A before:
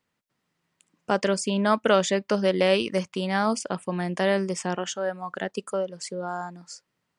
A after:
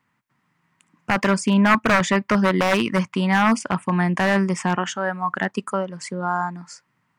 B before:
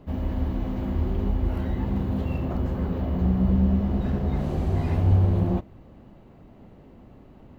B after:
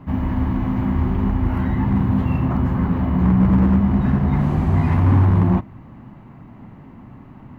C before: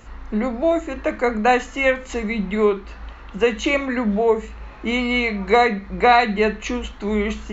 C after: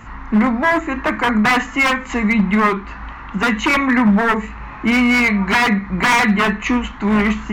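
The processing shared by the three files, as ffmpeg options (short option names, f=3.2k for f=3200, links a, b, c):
-af "aeval=exprs='0.15*(abs(mod(val(0)/0.15+3,4)-2)-1)':c=same,equalizer=f=125:t=o:w=1:g=10,equalizer=f=250:t=o:w=1:g=7,equalizer=f=500:t=o:w=1:g=-6,equalizer=f=1k:t=o:w=1:g=11,equalizer=f=2k:t=o:w=1:g=8,equalizer=f=4k:t=o:w=1:g=-3,volume=1dB"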